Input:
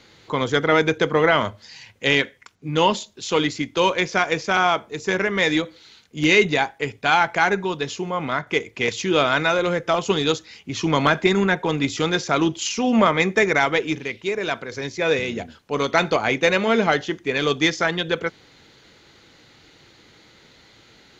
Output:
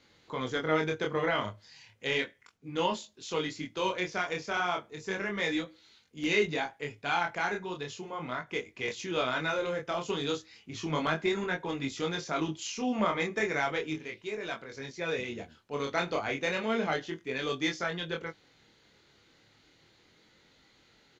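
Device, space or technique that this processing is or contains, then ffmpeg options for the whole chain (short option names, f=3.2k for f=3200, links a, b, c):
double-tracked vocal: -filter_complex "[0:a]asplit=2[a][b];[b]adelay=19,volume=-13dB[c];[a][c]amix=inputs=2:normalize=0,flanger=delay=22.5:depth=6.4:speed=0.34,volume=-9dB"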